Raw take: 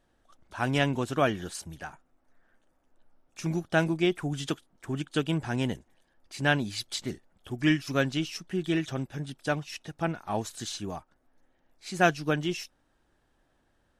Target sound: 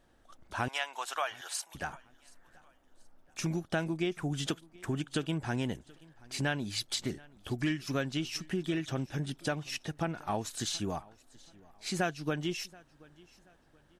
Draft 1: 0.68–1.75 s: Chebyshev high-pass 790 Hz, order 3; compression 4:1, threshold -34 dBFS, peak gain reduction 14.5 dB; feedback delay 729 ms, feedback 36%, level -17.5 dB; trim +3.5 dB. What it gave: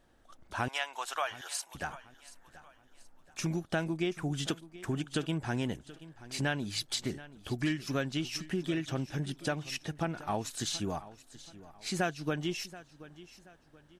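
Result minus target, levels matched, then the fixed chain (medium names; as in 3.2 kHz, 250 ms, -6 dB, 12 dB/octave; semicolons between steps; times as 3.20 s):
echo-to-direct +6.5 dB
0.68–1.75 s: Chebyshev high-pass 790 Hz, order 3; compression 4:1, threshold -34 dBFS, peak gain reduction 14.5 dB; feedback delay 729 ms, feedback 36%, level -24 dB; trim +3.5 dB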